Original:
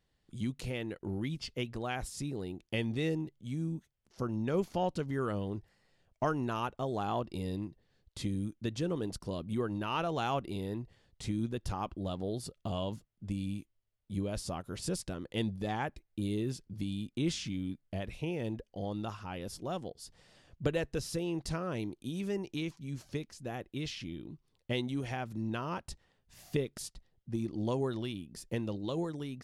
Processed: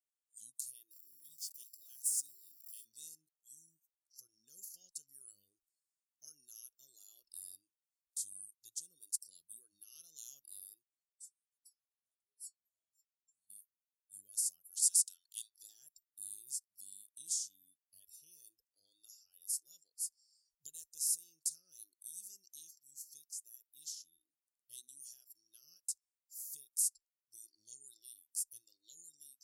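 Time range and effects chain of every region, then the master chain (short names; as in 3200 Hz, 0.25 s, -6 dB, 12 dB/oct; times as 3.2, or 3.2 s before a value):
0.91–2.85 zero-crossing step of -47 dBFS + HPF 130 Hz 6 dB/oct + high shelf 2200 Hz -3 dB
10.83–13.5 compressor 4:1, threshold -43 dBFS + metallic resonator 97 Hz, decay 0.42 s, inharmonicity 0.008
14.71–15.63 brick-wall FIR high-pass 1300 Hz + bell 2400 Hz +10.5 dB 2.4 oct
whole clip: inverse Chebyshev high-pass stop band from 2400 Hz, stop band 60 dB; spectral noise reduction 19 dB; gain +14.5 dB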